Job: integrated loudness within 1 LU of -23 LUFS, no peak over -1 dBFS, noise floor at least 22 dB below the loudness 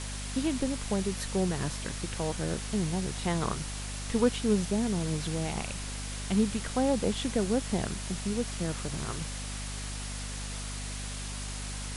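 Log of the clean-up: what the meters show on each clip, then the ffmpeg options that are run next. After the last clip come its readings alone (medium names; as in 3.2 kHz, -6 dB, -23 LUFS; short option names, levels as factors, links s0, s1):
hum 50 Hz; highest harmonic 250 Hz; hum level -36 dBFS; noise floor -37 dBFS; noise floor target -54 dBFS; loudness -32.0 LUFS; peak level -12.5 dBFS; loudness target -23.0 LUFS
-> -af "bandreject=f=50:t=h:w=4,bandreject=f=100:t=h:w=4,bandreject=f=150:t=h:w=4,bandreject=f=200:t=h:w=4,bandreject=f=250:t=h:w=4"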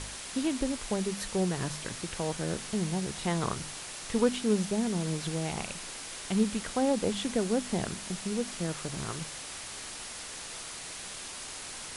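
hum not found; noise floor -42 dBFS; noise floor target -55 dBFS
-> -af "afftdn=nr=13:nf=-42"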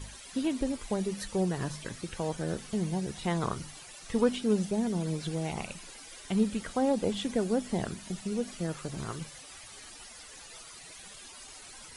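noise floor -49 dBFS; noise floor target -55 dBFS
-> -af "afftdn=nr=6:nf=-49"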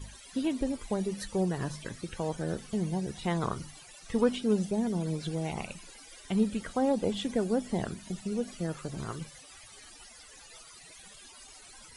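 noise floor -52 dBFS; noise floor target -55 dBFS
-> -af "afftdn=nr=6:nf=-52"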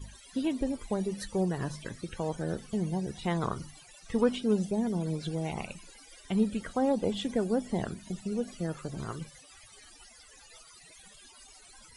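noise floor -55 dBFS; loudness -32.5 LUFS; peak level -13.5 dBFS; loudness target -23.0 LUFS
-> -af "volume=2.99"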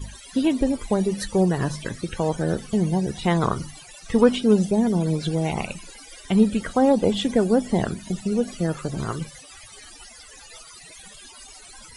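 loudness -23.0 LUFS; peak level -4.0 dBFS; noise floor -45 dBFS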